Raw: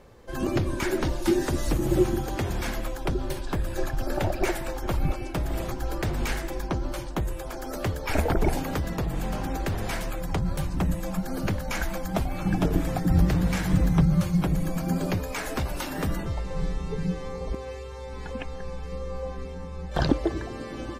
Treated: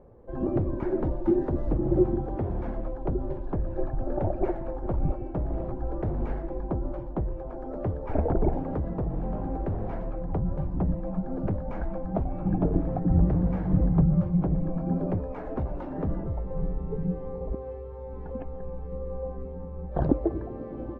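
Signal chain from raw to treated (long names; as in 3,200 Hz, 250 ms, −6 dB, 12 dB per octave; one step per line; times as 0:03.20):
Chebyshev low-pass filter 650 Hz, order 2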